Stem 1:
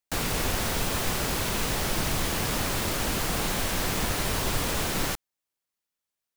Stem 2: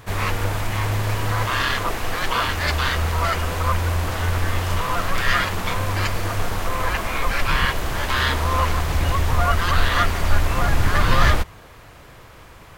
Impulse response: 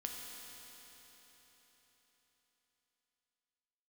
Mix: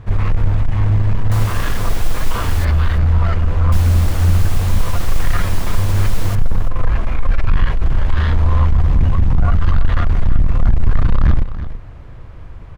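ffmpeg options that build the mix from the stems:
-filter_complex "[0:a]adelay=1200,volume=-3dB,asplit=3[a][b][c];[a]atrim=end=2.65,asetpts=PTS-STARTPTS,afade=t=out:st=2.646:d=0.004:c=hsin[d];[b]atrim=start=2.65:end=3.72,asetpts=PTS-STARTPTS,volume=0[e];[c]atrim=start=3.72,asetpts=PTS-STARTPTS,afade=t=in:d=0.004:c=hsin[f];[d][e][f]concat=n=3:v=0:a=1,asplit=2[g][h];[h]volume=-15.5dB[i];[1:a]aemphasis=mode=reproduction:type=riaa,asoftclip=type=tanh:threshold=-4.5dB,volume=-2.5dB,asplit=2[j][k];[k]volume=-12.5dB[l];[i][l]amix=inputs=2:normalize=0,aecho=0:1:332:1[m];[g][j][m]amix=inputs=3:normalize=0"

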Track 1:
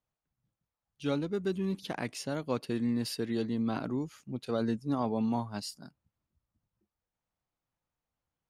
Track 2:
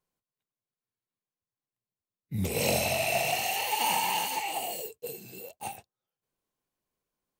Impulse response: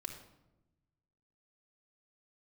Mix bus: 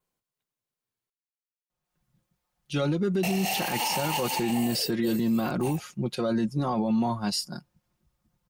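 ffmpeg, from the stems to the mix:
-filter_complex "[0:a]aecho=1:1:5.6:0.7,dynaudnorm=f=120:g=3:m=10dB,adelay=1700,volume=-0.5dB[a];[1:a]volume=3dB,asplit=3[b][c][d];[b]atrim=end=1.1,asetpts=PTS-STARTPTS,afade=t=out:st=1.096:d=0.004:c=hsin[e];[c]atrim=start=1.1:end=3.23,asetpts=PTS-STARTPTS,volume=0[f];[d]atrim=start=3.23,asetpts=PTS-STARTPTS,afade=t=in:d=0.004:c=hsin[g];[e][f][g]concat=n=3:v=0:a=1[h];[a][h]amix=inputs=2:normalize=0,adynamicequalizer=threshold=0.00447:dfrequency=5300:dqfactor=6.7:tfrequency=5300:tqfactor=6.7:attack=5:release=100:ratio=0.375:range=3:mode=boostabove:tftype=bell,alimiter=limit=-18.5dB:level=0:latency=1:release=32"

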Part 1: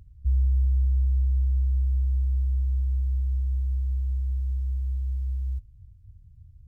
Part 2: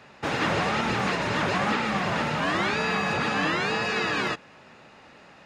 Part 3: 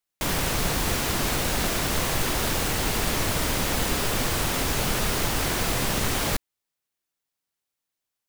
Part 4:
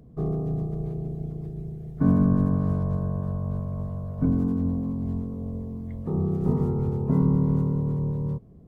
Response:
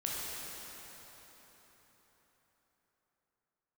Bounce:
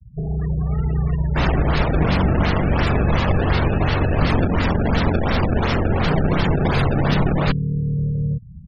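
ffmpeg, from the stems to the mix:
-filter_complex "[0:a]volume=-5.5dB[a];[1:a]highshelf=f=3.7k:t=q:w=1.5:g=-10.5,acompressor=threshold=-43dB:ratio=1.5,volume=-5.5dB[b];[2:a]equalizer=f=6.1k:t=o:w=0.22:g=-14,acrusher=samples=25:mix=1:aa=0.000001:lfo=1:lforange=40:lforate=2.8,adelay=1150,volume=1dB[c];[3:a]bass=f=250:g=4,treble=f=4k:g=15,aecho=1:1:1.6:0.57,acompressor=threshold=-25dB:ratio=10,volume=2.5dB[d];[a][b][c][d]amix=inputs=4:normalize=0,dynaudnorm=f=250:g=5:m=4.5dB,afftfilt=real='re*gte(hypot(re,im),0.0631)':imag='im*gte(hypot(re,im),0.0631)':win_size=1024:overlap=0.75"

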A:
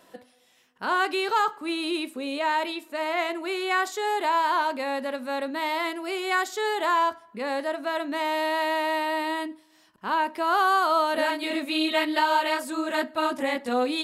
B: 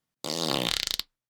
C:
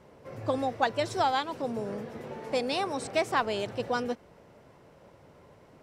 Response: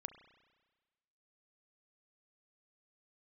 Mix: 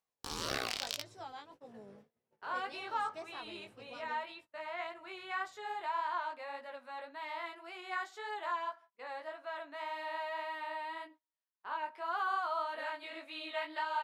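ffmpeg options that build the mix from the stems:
-filter_complex "[0:a]highpass=720,aemphasis=mode=reproduction:type=75fm,adelay=1600,volume=-9dB,asplit=2[a][b];[b]volume=-21dB[c];[1:a]acompressor=mode=upward:threshold=-36dB:ratio=2.5,aeval=exprs='val(0)*sin(2*PI*780*n/s+780*0.25/1.7*sin(2*PI*1.7*n/s))':c=same,volume=-3.5dB[d];[2:a]bandreject=f=60:t=h:w=6,bandreject=f=120:t=h:w=6,bandreject=f=180:t=h:w=6,bandreject=f=240:t=h:w=6,bandreject=f=300:t=h:w=6,bandreject=f=360:t=h:w=6,bandreject=f=420:t=h:w=6,bandreject=f=480:t=h:w=6,volume=-18dB,asplit=2[e][f];[f]volume=-19.5dB[g];[3:a]atrim=start_sample=2205[h];[c][g]amix=inputs=2:normalize=0[i];[i][h]afir=irnorm=-1:irlink=0[j];[a][d][e][j]amix=inputs=4:normalize=0,agate=range=-27dB:threshold=-53dB:ratio=16:detection=peak,flanger=delay=16.5:depth=4.2:speed=1.8"

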